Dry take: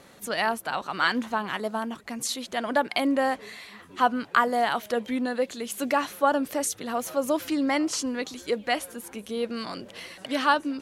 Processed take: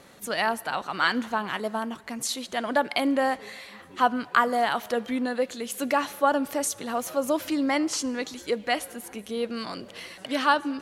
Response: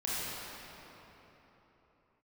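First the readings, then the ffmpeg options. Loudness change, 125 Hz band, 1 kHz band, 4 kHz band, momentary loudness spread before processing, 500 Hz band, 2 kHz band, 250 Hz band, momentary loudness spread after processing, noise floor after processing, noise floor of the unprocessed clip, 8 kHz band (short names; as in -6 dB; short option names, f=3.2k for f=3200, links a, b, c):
0.0 dB, n/a, +0.5 dB, +0.5 dB, 11 LU, 0.0 dB, +0.5 dB, 0.0 dB, 11 LU, -48 dBFS, -51 dBFS, +0.5 dB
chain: -filter_complex "[0:a]asplit=2[a][b];[b]highpass=430[c];[1:a]atrim=start_sample=2205,asetrate=83790,aresample=44100[d];[c][d]afir=irnorm=-1:irlink=0,volume=-21dB[e];[a][e]amix=inputs=2:normalize=0"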